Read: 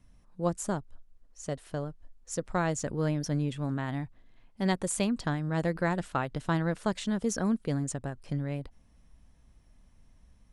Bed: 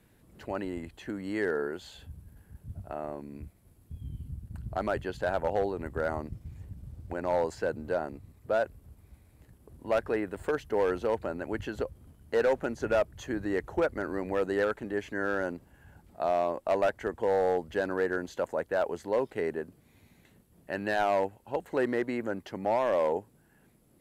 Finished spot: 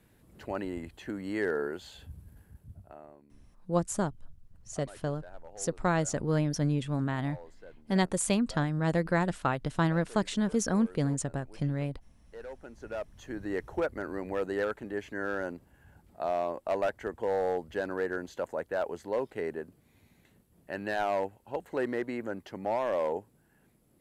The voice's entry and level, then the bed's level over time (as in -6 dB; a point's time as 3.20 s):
3.30 s, +1.5 dB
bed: 2.41 s -0.5 dB
3.36 s -20.5 dB
12.30 s -20.5 dB
13.52 s -3 dB